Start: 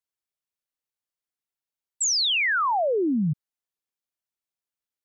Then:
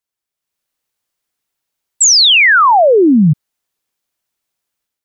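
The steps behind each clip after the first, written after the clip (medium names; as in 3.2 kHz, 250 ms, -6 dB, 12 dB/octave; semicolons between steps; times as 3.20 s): level rider gain up to 9 dB; trim +6 dB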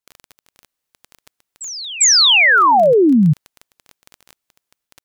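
reverse echo 398 ms -17.5 dB; crackle 17 per s -20 dBFS; trim -3 dB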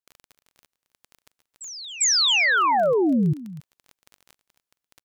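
delay 270 ms -16.5 dB; trim -8.5 dB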